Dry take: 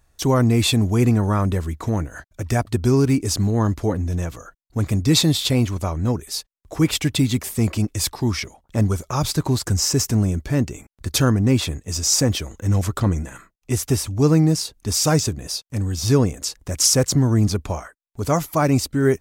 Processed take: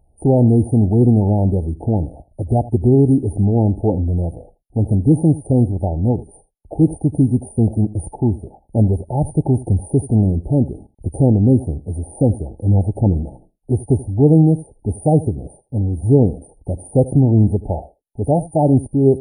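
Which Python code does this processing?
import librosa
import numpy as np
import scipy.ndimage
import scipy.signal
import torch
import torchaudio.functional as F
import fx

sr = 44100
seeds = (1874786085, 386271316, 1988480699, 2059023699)

y = fx.freq_compress(x, sr, knee_hz=3600.0, ratio=1.5)
y = fx.brickwall_bandstop(y, sr, low_hz=890.0, high_hz=9000.0)
y = y + 10.0 ** (-18.5 / 20.0) * np.pad(y, (int(81 * sr / 1000.0), 0))[:len(y)]
y = y * librosa.db_to_amplitude(4.5)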